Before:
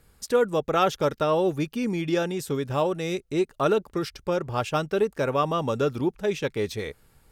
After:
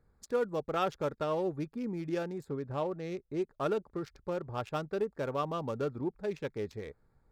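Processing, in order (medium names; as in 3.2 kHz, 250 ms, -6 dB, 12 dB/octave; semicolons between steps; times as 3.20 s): local Wiener filter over 15 samples; 2.47–3.41 s: treble shelf 5.8 kHz -> 9.5 kHz -10 dB; trim -9 dB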